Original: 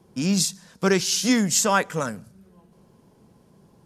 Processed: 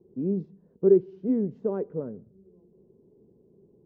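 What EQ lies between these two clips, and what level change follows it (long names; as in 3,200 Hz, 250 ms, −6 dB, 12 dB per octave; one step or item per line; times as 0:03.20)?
low-pass with resonance 400 Hz, resonance Q 4.9
high-frequency loss of the air 150 metres
−8.5 dB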